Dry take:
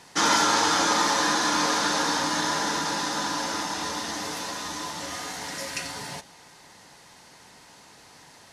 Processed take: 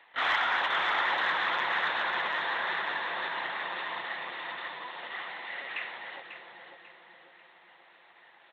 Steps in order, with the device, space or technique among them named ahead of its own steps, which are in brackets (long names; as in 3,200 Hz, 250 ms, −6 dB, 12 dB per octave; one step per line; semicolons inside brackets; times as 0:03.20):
talking toy (linear-prediction vocoder at 8 kHz; high-pass filter 570 Hz 12 dB per octave; parametric band 1,900 Hz +6 dB 0.3 octaves; soft clipping −13.5 dBFS, distortion −23 dB)
repeating echo 543 ms, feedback 40%, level −7 dB
bucket-brigade delay 548 ms, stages 2,048, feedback 50%, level −3 dB
dynamic equaliser 2,300 Hz, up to +5 dB, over −39 dBFS, Q 1.3
level −6 dB